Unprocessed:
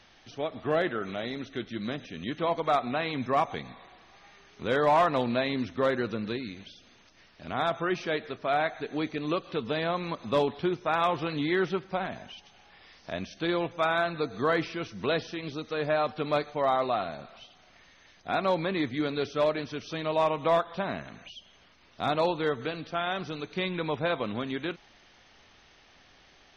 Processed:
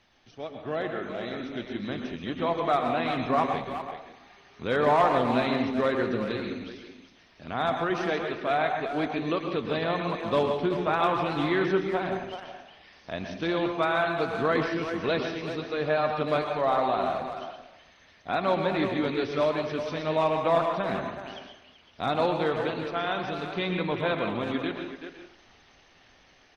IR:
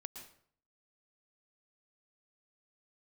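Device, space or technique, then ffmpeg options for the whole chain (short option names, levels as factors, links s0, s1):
speakerphone in a meeting room: -filter_complex "[0:a]asettb=1/sr,asplit=3[s0][s1][s2];[s0]atrim=end=10.484[s3];[s1]atrim=start=10.48:end=11.05,asetpts=PTS-STARTPTS,afade=t=in:d=0.004:c=qsin,afade=t=out:st=0.566:d=0.004:c=qsin,adynamicequalizer=threshold=0.00501:dfrequency=110:dqfactor=1.6:tfrequency=110:tqfactor=1.6:attack=5:release=100:ratio=0.375:range=2:mode=boostabove:tftype=bell[s4];[s2]atrim=start=11.046[s5];[s3][s4]acrossfade=d=0.004:c1=hsin:c2=qsin[s6];[s6][s5]acrossfade=d=0.004:c1=qsin:c2=hsin[s7];[1:a]atrim=start_sample=2205[s8];[s7][s8]afir=irnorm=-1:irlink=0,asplit=2[s9][s10];[s10]adelay=380,highpass=300,lowpass=3400,asoftclip=type=hard:threshold=0.0501,volume=0.398[s11];[s9][s11]amix=inputs=2:normalize=0,dynaudnorm=f=910:g=3:m=2" -ar 48000 -c:a libopus -b:a 24k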